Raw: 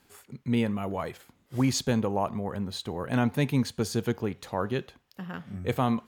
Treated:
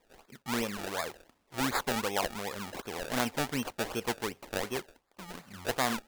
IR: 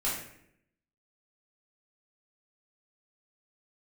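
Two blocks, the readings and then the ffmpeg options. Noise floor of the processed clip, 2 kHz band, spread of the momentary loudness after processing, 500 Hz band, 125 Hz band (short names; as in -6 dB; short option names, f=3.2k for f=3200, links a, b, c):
-72 dBFS, +3.0 dB, 13 LU, -4.0 dB, -13.5 dB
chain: -af "acrusher=samples=29:mix=1:aa=0.000001:lfo=1:lforange=29:lforate=2.7,equalizer=f=120:t=o:w=2.5:g=-14.5"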